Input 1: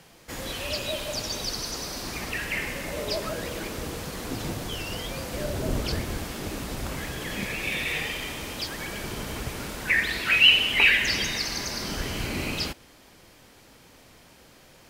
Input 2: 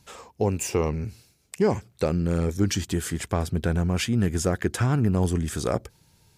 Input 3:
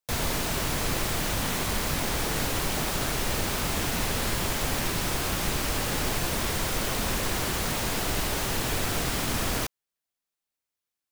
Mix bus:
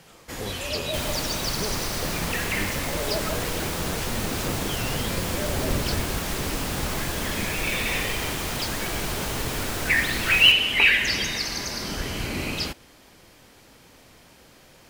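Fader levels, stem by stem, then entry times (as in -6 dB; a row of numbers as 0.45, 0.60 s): +1.0, -12.5, -2.0 dB; 0.00, 0.00, 0.85 s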